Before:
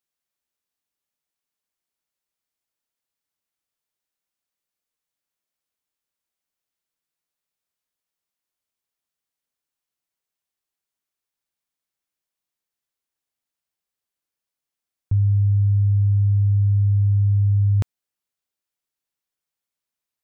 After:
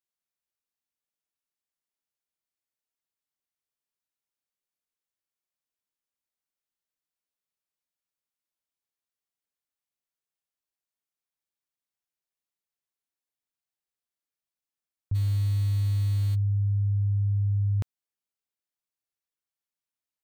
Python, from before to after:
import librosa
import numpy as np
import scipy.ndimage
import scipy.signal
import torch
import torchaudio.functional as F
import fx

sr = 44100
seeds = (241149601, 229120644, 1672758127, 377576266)

y = fx.delta_hold(x, sr, step_db=-31.5, at=(15.14, 16.34), fade=0.02)
y = y * librosa.db_to_amplitude(-7.5)